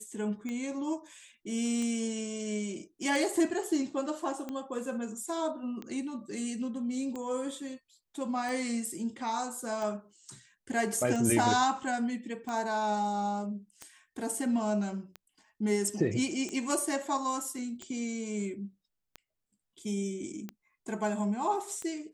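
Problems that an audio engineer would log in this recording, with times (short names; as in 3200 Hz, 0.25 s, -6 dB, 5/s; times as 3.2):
tick 45 rpm -25 dBFS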